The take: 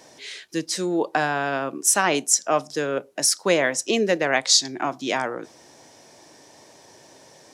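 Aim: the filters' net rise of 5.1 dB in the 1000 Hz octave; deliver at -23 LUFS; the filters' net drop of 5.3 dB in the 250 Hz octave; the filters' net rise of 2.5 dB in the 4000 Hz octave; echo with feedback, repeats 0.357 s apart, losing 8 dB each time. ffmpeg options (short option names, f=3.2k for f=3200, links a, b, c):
-af "equalizer=f=250:t=o:g=-8.5,equalizer=f=1k:t=o:g=7.5,equalizer=f=4k:t=o:g=3,aecho=1:1:357|714|1071|1428|1785:0.398|0.159|0.0637|0.0255|0.0102,volume=-3.5dB"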